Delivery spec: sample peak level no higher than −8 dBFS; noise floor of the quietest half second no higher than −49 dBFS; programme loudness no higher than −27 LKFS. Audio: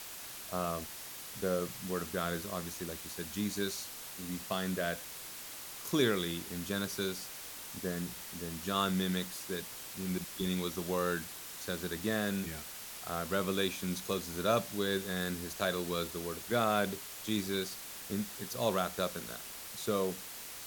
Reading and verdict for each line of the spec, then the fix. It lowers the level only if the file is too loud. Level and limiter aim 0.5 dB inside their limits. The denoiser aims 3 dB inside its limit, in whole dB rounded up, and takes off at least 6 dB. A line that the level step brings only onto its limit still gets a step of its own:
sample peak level −14.5 dBFS: in spec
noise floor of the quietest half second −46 dBFS: out of spec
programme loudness −35.5 LKFS: in spec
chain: broadband denoise 6 dB, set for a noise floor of −46 dBFS

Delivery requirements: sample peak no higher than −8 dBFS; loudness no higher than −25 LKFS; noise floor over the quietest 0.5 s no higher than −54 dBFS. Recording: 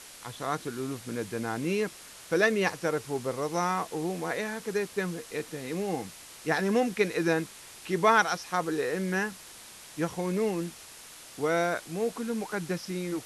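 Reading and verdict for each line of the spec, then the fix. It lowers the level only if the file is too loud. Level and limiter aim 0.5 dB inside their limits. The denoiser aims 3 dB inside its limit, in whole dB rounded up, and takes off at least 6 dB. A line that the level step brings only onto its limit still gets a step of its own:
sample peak −10.0 dBFS: in spec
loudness −30.0 LKFS: in spec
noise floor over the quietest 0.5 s −48 dBFS: out of spec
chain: broadband denoise 9 dB, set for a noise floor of −48 dBFS

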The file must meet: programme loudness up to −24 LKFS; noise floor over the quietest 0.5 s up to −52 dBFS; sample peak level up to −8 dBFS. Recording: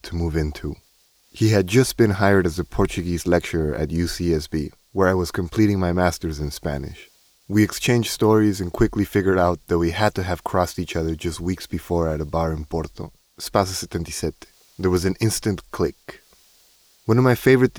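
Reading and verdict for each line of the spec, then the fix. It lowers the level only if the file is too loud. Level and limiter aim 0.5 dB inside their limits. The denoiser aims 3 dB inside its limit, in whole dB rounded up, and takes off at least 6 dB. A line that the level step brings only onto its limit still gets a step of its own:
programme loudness −21.5 LKFS: out of spec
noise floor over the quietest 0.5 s −59 dBFS: in spec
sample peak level −4.0 dBFS: out of spec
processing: level −3 dB
brickwall limiter −8.5 dBFS

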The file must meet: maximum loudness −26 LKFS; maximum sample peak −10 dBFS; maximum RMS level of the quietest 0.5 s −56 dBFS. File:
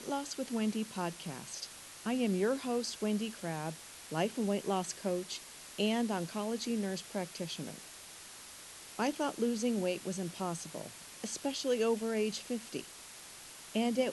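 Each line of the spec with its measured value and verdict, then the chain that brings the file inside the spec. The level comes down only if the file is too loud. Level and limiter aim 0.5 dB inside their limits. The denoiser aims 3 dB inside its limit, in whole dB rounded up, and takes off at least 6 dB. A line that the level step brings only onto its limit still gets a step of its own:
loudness −36.0 LKFS: in spec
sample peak −18.5 dBFS: in spec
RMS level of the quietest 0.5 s −51 dBFS: out of spec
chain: broadband denoise 8 dB, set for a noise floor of −51 dBFS

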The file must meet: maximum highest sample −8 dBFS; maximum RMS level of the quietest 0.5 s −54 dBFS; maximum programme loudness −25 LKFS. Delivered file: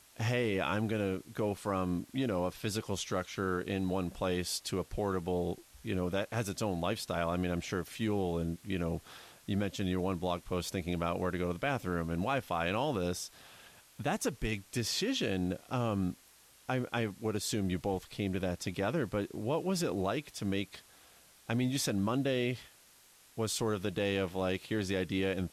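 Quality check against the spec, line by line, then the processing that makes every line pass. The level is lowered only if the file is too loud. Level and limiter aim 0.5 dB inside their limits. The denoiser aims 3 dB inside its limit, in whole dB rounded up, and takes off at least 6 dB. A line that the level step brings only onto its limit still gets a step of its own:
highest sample −19.0 dBFS: in spec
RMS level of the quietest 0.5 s −61 dBFS: in spec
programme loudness −34.5 LKFS: in spec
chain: no processing needed

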